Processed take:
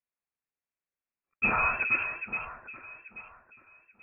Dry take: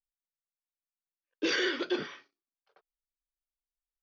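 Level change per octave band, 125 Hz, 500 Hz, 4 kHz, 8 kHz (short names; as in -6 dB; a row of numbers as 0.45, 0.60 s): +11.5 dB, -7.5 dB, under -25 dB, n/a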